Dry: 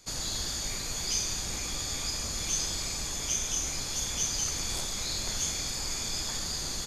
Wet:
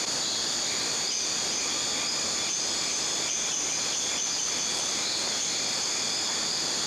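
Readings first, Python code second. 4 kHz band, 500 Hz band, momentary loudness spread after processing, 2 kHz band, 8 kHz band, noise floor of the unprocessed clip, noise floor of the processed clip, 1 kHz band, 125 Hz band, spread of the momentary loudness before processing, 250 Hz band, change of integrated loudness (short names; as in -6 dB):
+6.0 dB, +6.5 dB, 0 LU, +6.5 dB, +4.0 dB, -35 dBFS, -29 dBFS, +7.0 dB, -7.0 dB, 4 LU, +3.0 dB, +4.5 dB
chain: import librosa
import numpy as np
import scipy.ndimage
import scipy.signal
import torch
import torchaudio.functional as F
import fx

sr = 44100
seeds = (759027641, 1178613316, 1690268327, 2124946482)

p1 = fx.bandpass_edges(x, sr, low_hz=260.0, high_hz=7300.0)
p2 = p1 + fx.echo_single(p1, sr, ms=406, db=-5.5, dry=0)
y = fx.env_flatten(p2, sr, amount_pct=100)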